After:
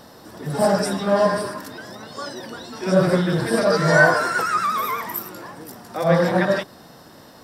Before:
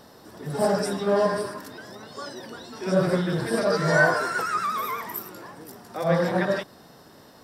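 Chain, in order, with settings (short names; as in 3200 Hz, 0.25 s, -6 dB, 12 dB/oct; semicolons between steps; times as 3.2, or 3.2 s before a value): notch 410 Hz, Q 12; gain +5 dB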